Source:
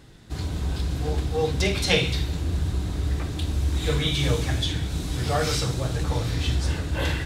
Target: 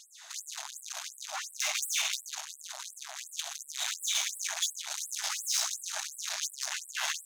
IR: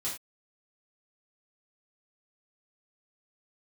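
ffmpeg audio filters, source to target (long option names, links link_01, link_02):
-filter_complex "[0:a]aeval=exprs='(tanh(44.7*val(0)+0.4)-tanh(0.4))/44.7':channel_layout=same,equalizer=frequency=6400:width_type=o:width=0.3:gain=12,asplit=2[link_01][link_02];[link_02]alimiter=level_in=3.5dB:limit=-24dB:level=0:latency=1:release=199,volume=-3.5dB,volume=3dB[link_03];[link_01][link_03]amix=inputs=2:normalize=0,afftfilt=real='re*gte(b*sr/1024,580*pow(7900/580,0.5+0.5*sin(2*PI*2.8*pts/sr)))':imag='im*gte(b*sr/1024,580*pow(7900/580,0.5+0.5*sin(2*PI*2.8*pts/sr)))':win_size=1024:overlap=0.75"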